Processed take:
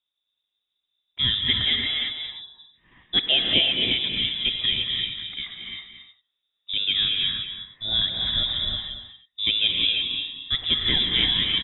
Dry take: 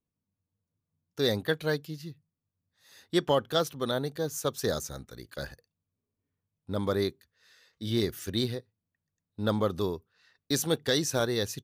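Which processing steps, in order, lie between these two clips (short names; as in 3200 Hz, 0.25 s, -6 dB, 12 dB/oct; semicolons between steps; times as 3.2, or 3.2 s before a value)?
tapped delay 0.225/0.316 s -10/-18 dB; inverted band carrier 3700 Hz; non-linear reverb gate 0.37 s rising, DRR 0 dB; gain +3.5 dB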